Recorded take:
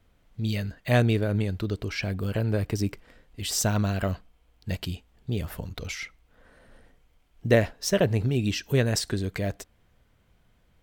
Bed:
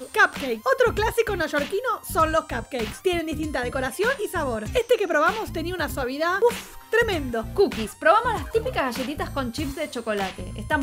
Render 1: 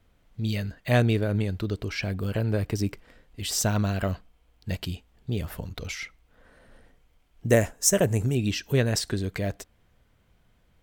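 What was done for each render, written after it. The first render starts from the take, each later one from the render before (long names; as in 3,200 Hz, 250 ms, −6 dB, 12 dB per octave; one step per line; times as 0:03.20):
0:07.49–0:08.35: high shelf with overshoot 5,600 Hz +9 dB, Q 3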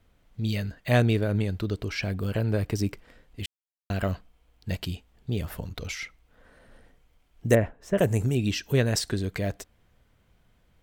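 0:03.46–0:03.90: silence
0:07.55–0:07.98: high-frequency loss of the air 470 metres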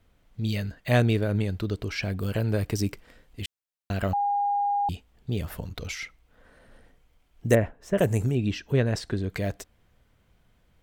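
0:02.19–0:03.40: high-shelf EQ 4,400 Hz +4.5 dB
0:04.13–0:04.89: beep over 812 Hz −22 dBFS
0:08.31–0:09.30: low-pass filter 2,100 Hz 6 dB per octave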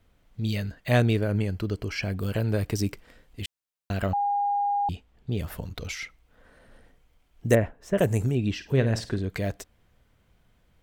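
0:01.18–0:02.15: Butterworth band-reject 3,700 Hz, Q 7.2
0:04.06–0:05.39: high-shelf EQ 5,900 Hz −8.5 dB
0:08.53–0:09.19: flutter between parallel walls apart 9 metres, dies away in 0.27 s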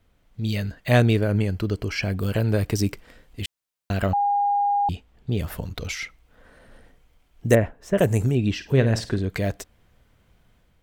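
automatic gain control gain up to 4 dB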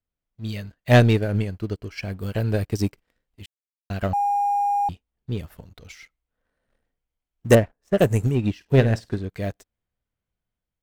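leveller curve on the samples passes 2
expander for the loud parts 2.5 to 1, over −23 dBFS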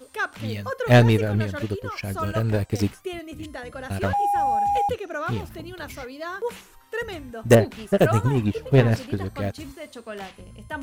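mix in bed −9.5 dB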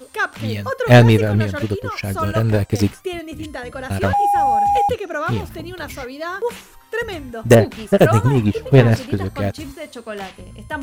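level +6 dB
brickwall limiter −1 dBFS, peak gain reduction 2.5 dB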